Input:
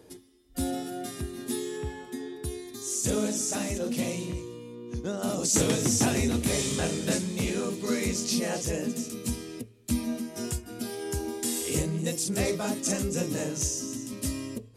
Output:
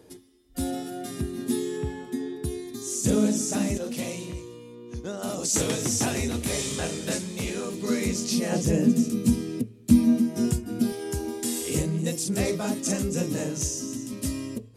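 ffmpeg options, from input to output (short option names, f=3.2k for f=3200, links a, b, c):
-af "asetnsamples=n=441:p=0,asendcmd='1.1 equalizer g 8.5;3.77 equalizer g -3;7.74 equalizer g 3.5;8.52 equalizer g 13.5;10.92 equalizer g 3.5',equalizer=f=190:t=o:w=1.9:g=1.5"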